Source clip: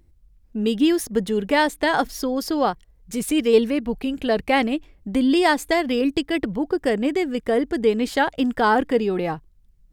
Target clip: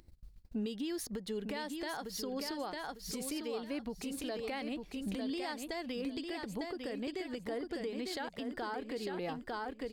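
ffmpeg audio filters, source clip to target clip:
-filter_complex "[0:a]equalizer=f=4.4k:t=o:w=0.38:g=8.5,acompressor=threshold=-25dB:ratio=6,lowshelf=f=210:g=-5,agate=range=-31dB:threshold=-56dB:ratio=16:detection=peak,acompressor=mode=upward:threshold=-36dB:ratio=2.5,asplit=2[a][b];[b]aecho=0:1:901|1802|2703:0.501|0.1|0.02[c];[a][c]amix=inputs=2:normalize=0,alimiter=level_in=1.5dB:limit=-24dB:level=0:latency=1:release=302,volume=-1.5dB,volume=-4dB"

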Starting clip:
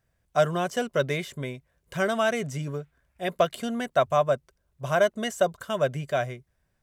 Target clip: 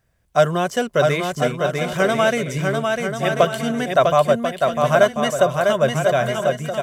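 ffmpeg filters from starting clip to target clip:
-af "aecho=1:1:650|1040|1274|1414|1499:0.631|0.398|0.251|0.158|0.1,volume=6.5dB"

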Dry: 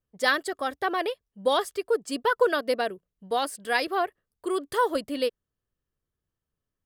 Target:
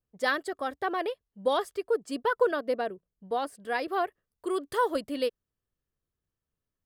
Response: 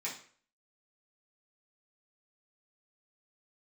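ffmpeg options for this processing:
-af "asetnsamples=n=441:p=0,asendcmd='2.51 highshelf g -12;3.88 highshelf g -2.5',highshelf=f=2.1k:g=-6.5,volume=-2dB"

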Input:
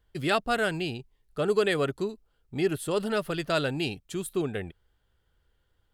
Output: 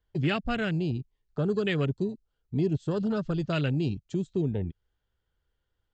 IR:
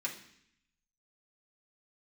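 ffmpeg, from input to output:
-filter_complex "[0:a]afwtdn=0.0251,aresample=16000,aresample=44100,acrossover=split=230|3000[a][b][c];[b]acompressor=threshold=-48dB:ratio=2.5[d];[a][d][c]amix=inputs=3:normalize=0,volume=8.5dB"

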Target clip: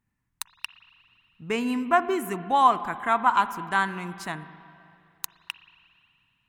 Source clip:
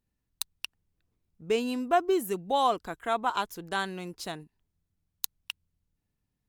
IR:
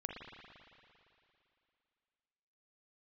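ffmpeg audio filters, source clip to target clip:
-filter_complex "[0:a]equalizer=f=125:t=o:w=1:g=9,equalizer=f=250:t=o:w=1:g=6,equalizer=f=500:t=o:w=1:g=-5,equalizer=f=1k:t=o:w=1:g=11,equalizer=f=2k:t=o:w=1:g=11,equalizer=f=4k:t=o:w=1:g=-4,equalizer=f=8k:t=o:w=1:g=4,asplit=2[a][b];[1:a]atrim=start_sample=2205[c];[b][c]afir=irnorm=-1:irlink=0,volume=-7.5dB[d];[a][d]amix=inputs=2:normalize=0,volume=-5dB"

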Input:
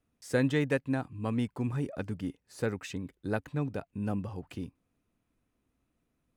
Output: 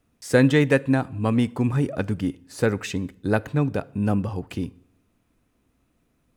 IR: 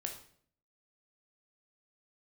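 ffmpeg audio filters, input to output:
-filter_complex "[0:a]asplit=2[a][b];[1:a]atrim=start_sample=2205,asetrate=35721,aresample=44100[c];[b][c]afir=irnorm=-1:irlink=0,volume=-16dB[d];[a][d]amix=inputs=2:normalize=0,volume=9dB"

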